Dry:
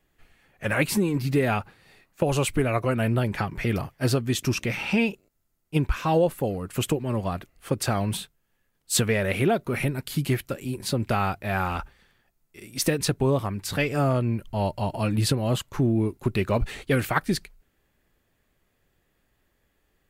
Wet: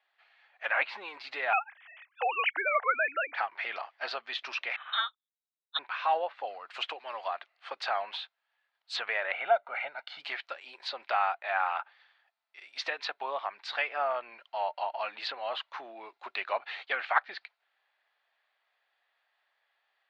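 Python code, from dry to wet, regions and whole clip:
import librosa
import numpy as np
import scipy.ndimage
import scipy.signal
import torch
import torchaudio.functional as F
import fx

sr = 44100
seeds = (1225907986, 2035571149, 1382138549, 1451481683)

y = fx.chain(x, sr, fx.sine_speech(),
    fx.peak_eq(hz=2700.0, db=6.0, octaves=1.8), at=(1.53, 3.35))
y = fx.chain(y, sr, fx.low_shelf(hz=240.0, db=-9.0),
    fx.freq_invert(carrier_hz=3900),
    fx.upward_expand(threshold_db=-42.0, expansion=2.5), at=(4.76, 5.79))
y = fx.chain(y, sr, fx.highpass(hz=230.0, slope=6),
    fx.high_shelf(hz=5700.0, db=9.5), at=(6.74, 7.28))
y = fx.chain(y, sr, fx.lowpass(hz=1900.0, slope=6),
    fx.comb(ms=1.4, depth=0.66), at=(9.32, 10.2))
y = scipy.signal.sosfilt(scipy.signal.ellip(3, 1.0, 80, [720.0, 4200.0], 'bandpass', fs=sr, output='sos'), y)
y = fx.env_lowpass_down(y, sr, base_hz=2600.0, full_db=-28.5)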